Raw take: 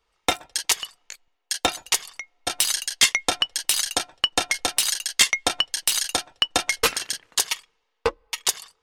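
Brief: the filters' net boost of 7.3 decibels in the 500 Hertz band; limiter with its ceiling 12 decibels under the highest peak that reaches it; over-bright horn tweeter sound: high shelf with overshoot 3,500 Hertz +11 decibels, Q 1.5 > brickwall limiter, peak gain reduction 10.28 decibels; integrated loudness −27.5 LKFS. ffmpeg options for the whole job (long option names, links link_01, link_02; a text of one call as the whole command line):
ffmpeg -i in.wav -af "equalizer=frequency=500:width_type=o:gain=8.5,alimiter=limit=-14.5dB:level=0:latency=1,highshelf=frequency=3500:width_type=q:width=1.5:gain=11,volume=-3dB,alimiter=limit=-14.5dB:level=0:latency=1" out.wav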